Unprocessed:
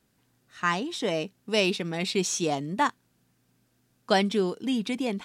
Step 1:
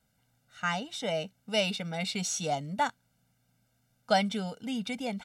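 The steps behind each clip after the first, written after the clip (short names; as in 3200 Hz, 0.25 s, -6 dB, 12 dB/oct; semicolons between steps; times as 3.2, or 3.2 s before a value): comb 1.4 ms, depth 96%; gain -6 dB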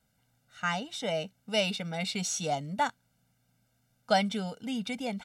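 nothing audible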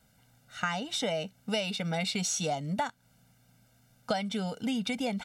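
compressor 8:1, threshold -36 dBFS, peak gain reduction 16 dB; gain +8 dB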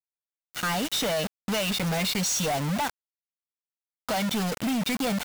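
companded quantiser 2-bit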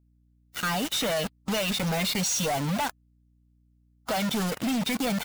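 bin magnitudes rounded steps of 15 dB; hum 60 Hz, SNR 34 dB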